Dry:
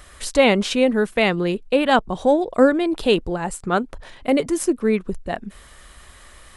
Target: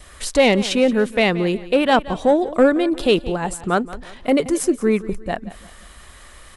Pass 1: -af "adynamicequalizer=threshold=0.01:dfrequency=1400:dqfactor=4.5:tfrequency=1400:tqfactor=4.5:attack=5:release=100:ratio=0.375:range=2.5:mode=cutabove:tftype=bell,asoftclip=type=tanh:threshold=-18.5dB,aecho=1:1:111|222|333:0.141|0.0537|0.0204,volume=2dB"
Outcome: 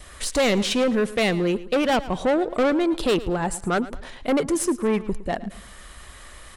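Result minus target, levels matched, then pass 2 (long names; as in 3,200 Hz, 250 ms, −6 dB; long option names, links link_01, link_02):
soft clipping: distortion +12 dB; echo 65 ms early
-af "adynamicequalizer=threshold=0.01:dfrequency=1400:dqfactor=4.5:tfrequency=1400:tqfactor=4.5:attack=5:release=100:ratio=0.375:range=2.5:mode=cutabove:tftype=bell,asoftclip=type=tanh:threshold=-6.5dB,aecho=1:1:176|352|528:0.141|0.0537|0.0204,volume=2dB"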